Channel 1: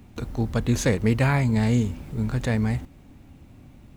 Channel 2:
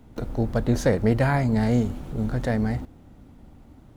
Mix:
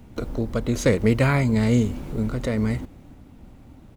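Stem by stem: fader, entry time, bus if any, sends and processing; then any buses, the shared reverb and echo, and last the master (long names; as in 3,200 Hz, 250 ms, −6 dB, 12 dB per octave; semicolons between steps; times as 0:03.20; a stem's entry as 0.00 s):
+2.0 dB, 0.00 s, no send, sample-and-hold tremolo
+1.0 dB, 1.4 ms, polarity flipped, no send, downward compressor, threshold −26 dBFS, peak gain reduction 11 dB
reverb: not used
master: no processing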